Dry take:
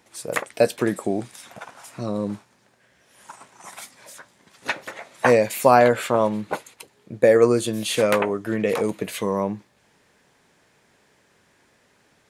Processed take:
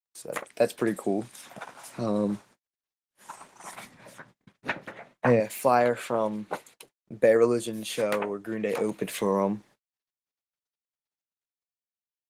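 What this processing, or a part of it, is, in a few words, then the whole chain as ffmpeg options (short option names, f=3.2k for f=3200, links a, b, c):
video call: -filter_complex "[0:a]asettb=1/sr,asplit=3[a][b][c];[a]atrim=end=3.754[d];[b]atrim=start=3.75:end=5.4,asetpts=PTS-STARTPTS,afade=t=in:d=0.004:c=qsin,afade=t=out:st=1.646:d=0.004:c=qsin,bass=f=250:g=12,treble=f=4k:g=-11[e];[c]atrim=start=5.396[f];[d][e]acrossfade=d=0.004:c1=hsin:c2=qsin[g];[g][f]acrossfade=d=0.004:c1=qsin:c2=hsin,highpass=f=120:w=0.5412,highpass=f=120:w=1.3066,dynaudnorm=f=130:g=11:m=7.5dB,agate=range=-44dB:threshold=-44dB:ratio=16:detection=peak,volume=-7dB" -ar 48000 -c:a libopus -b:a 20k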